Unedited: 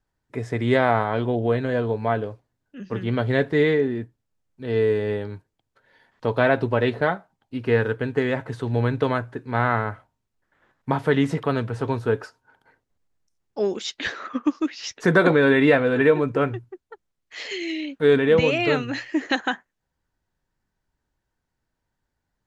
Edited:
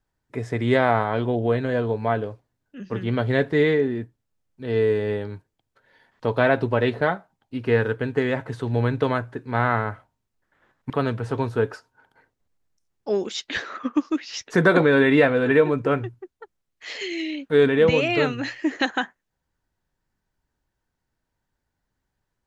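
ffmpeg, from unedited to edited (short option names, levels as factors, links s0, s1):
-filter_complex "[0:a]asplit=2[s0][s1];[s0]atrim=end=10.902[s2];[s1]atrim=start=11.398[s3];[s2][s3]acrossfade=d=0.004:c1=hsin:c2=hsin"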